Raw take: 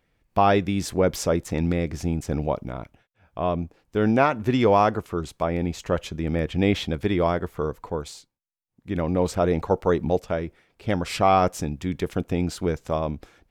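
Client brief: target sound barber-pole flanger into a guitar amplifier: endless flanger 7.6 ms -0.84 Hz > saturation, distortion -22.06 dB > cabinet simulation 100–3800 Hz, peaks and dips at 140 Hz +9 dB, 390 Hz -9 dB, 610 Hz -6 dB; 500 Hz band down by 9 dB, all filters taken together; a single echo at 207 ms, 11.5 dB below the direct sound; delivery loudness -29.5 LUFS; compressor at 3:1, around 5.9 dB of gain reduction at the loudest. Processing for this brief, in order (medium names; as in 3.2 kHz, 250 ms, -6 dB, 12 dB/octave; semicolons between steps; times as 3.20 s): peaking EQ 500 Hz -5 dB; compression 3:1, threshold -24 dBFS; delay 207 ms -11.5 dB; endless flanger 7.6 ms -0.84 Hz; saturation -19 dBFS; cabinet simulation 100–3800 Hz, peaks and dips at 140 Hz +9 dB, 390 Hz -9 dB, 610 Hz -6 dB; trim +5 dB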